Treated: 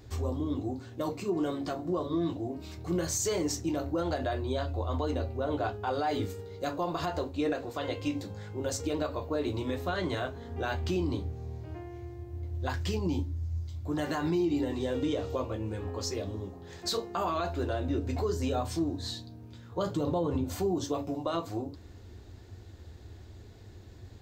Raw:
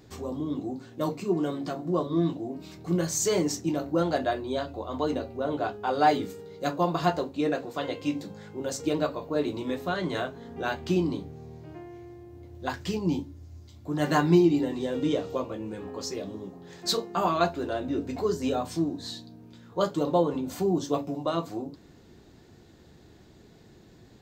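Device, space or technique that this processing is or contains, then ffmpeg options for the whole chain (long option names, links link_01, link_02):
car stereo with a boomy subwoofer: -filter_complex "[0:a]asettb=1/sr,asplit=3[link_01][link_02][link_03];[link_01]atrim=end=19.784[link_04];[link_02]atrim=start=19.78:end=20.44,asetpts=PTS-STARTPTS,afade=type=in:duration=0.004:curve=qsin,afade=type=out:start_time=0.656:duration=0.004:curve=qsin,equalizer=frequency=130:width=0.82:gain=10[link_05];[link_03]atrim=start=20.436[link_06];[link_04][link_05]acrossfade=duration=0.004:curve1=hsin:curve2=qsin[link_07];[link_07][link_06]acrossfade=duration=0.004:curve1=qsin:curve2=hsin,lowshelf=frequency=120:width_type=q:width=3:gain=7.5,alimiter=limit=-21.5dB:level=0:latency=1:release=77"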